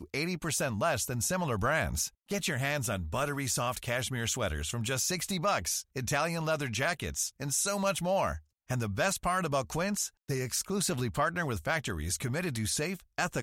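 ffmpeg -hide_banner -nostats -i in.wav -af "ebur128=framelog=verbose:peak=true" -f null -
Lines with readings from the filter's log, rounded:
Integrated loudness:
  I:         -31.4 LUFS
  Threshold: -41.4 LUFS
Loudness range:
  LRA:         1.0 LU
  Threshold: -51.3 LUFS
  LRA low:   -31.9 LUFS
  LRA high:  -30.8 LUFS
True peak:
  Peak:      -16.2 dBFS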